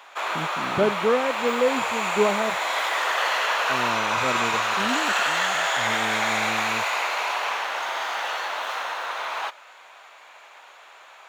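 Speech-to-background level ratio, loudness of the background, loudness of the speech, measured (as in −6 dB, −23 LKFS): −3.5 dB, −24.5 LKFS, −28.0 LKFS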